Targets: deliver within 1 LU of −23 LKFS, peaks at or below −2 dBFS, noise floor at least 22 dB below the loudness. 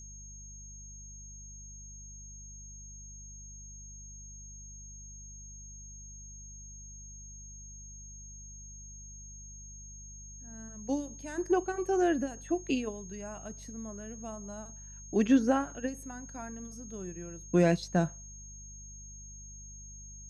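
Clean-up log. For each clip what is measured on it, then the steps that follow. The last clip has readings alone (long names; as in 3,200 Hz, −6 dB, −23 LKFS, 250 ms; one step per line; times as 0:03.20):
mains hum 50 Hz; hum harmonics up to 200 Hz; level of the hum −47 dBFS; interfering tone 6,500 Hz; level of the tone −48 dBFS; integrated loudness −32.5 LKFS; sample peak −13.5 dBFS; target loudness −23.0 LKFS
→ hum removal 50 Hz, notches 4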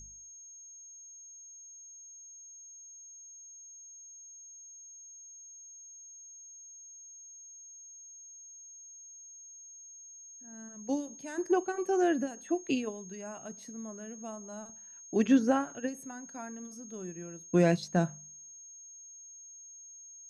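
mains hum none found; interfering tone 6,500 Hz; level of the tone −48 dBFS
→ notch filter 6,500 Hz, Q 30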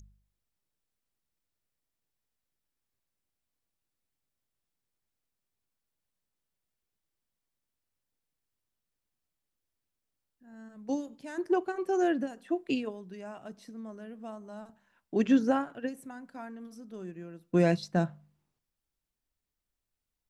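interfering tone none found; integrated loudness −30.5 LKFS; sample peak −13.5 dBFS; target loudness −23.0 LKFS
→ level +7.5 dB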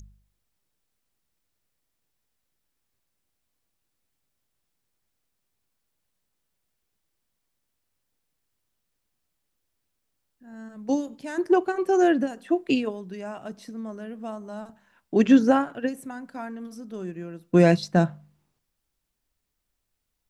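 integrated loudness −23.0 LKFS; sample peak −6.0 dBFS; background noise floor −79 dBFS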